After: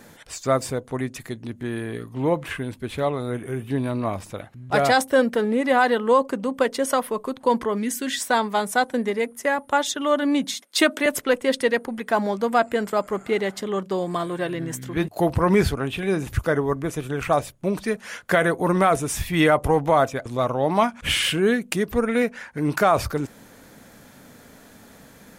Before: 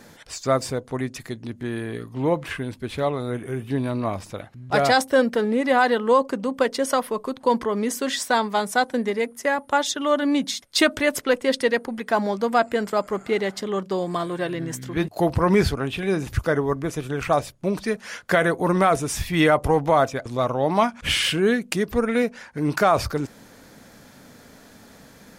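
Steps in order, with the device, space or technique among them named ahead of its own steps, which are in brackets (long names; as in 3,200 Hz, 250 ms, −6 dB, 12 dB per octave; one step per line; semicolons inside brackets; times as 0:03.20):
0:07.77–0:08.21: gain on a spectral selection 380–1,400 Hz −9 dB
0:10.54–0:11.06: Butterworth high-pass 200 Hz
0:22.21–0:22.61: dynamic equaliser 1,800 Hz, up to +5 dB, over −44 dBFS, Q 1.2
exciter from parts (in parallel at −7 dB: high-pass filter 4,600 Hz 24 dB per octave + soft clipping −16 dBFS, distortion −22 dB)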